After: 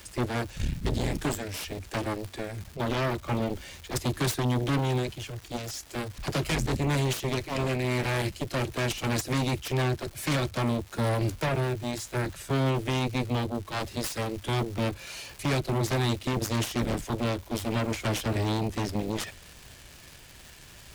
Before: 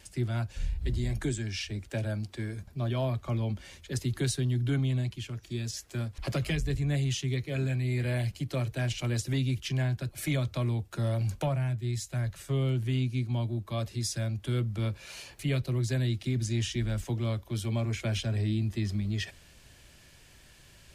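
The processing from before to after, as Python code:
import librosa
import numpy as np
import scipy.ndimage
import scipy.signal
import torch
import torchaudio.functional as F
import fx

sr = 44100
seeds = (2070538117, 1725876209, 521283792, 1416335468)

y = fx.cheby_harmonics(x, sr, harmonics=(7,), levels_db=(-8,), full_scale_db=-19.5)
y = fx.dmg_crackle(y, sr, seeds[0], per_s=490.0, level_db=-38.0)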